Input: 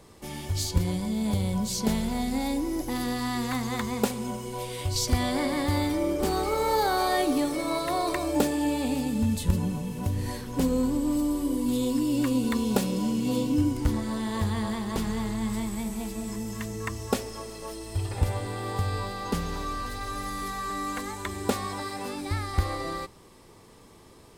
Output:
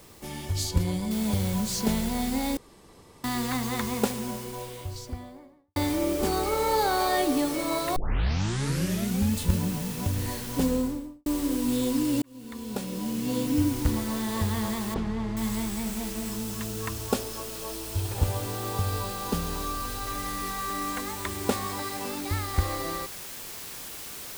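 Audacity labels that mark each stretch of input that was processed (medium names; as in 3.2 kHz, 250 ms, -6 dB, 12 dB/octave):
1.110000	1.110000	noise floor step -55 dB -40 dB
2.570000	3.240000	room tone
3.960000	5.760000	studio fade out
7.960000	7.960000	tape start 1.38 s
10.650000	11.260000	studio fade out
12.220000	13.600000	fade in
14.940000	15.370000	tape spacing loss at 10 kHz 24 dB
16.310000	20.070000	peaking EQ 2 kHz -7 dB 0.29 oct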